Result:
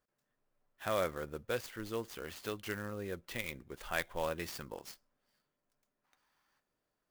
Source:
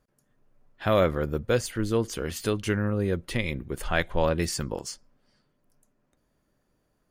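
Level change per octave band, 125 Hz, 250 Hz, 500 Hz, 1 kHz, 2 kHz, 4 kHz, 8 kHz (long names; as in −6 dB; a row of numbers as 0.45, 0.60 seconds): −18.0, −15.5, −12.0, −9.0, −8.5, −10.0, −12.5 decibels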